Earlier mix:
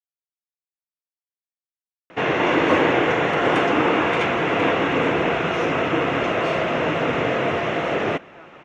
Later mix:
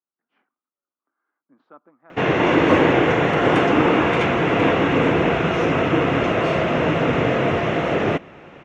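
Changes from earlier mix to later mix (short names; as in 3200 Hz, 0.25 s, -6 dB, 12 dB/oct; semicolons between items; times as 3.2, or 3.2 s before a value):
speech: entry -2.90 s; master: add low shelf 280 Hz +8.5 dB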